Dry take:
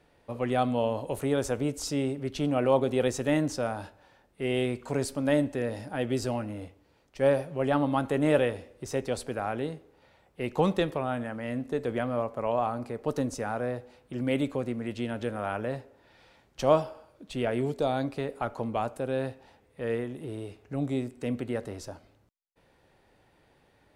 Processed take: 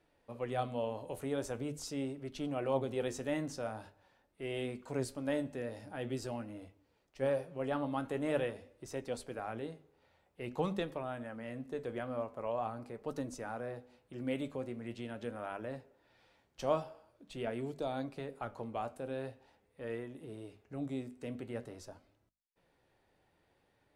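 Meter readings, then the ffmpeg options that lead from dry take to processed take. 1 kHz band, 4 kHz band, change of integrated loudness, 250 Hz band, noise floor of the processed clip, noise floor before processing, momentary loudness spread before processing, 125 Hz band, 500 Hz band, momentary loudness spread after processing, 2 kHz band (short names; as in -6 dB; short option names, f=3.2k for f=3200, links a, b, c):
-9.5 dB, -9.5 dB, -9.5 dB, -10.0 dB, -74 dBFS, -65 dBFS, 11 LU, -10.5 dB, -9.5 dB, 12 LU, -9.5 dB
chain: -af "bandreject=f=50:t=h:w=6,bandreject=f=100:t=h:w=6,bandreject=f=150:t=h:w=6,bandreject=f=200:t=h:w=6,bandreject=f=250:t=h:w=6,flanger=delay=3:depth=9:regen=70:speed=0.45:shape=sinusoidal,volume=-5dB"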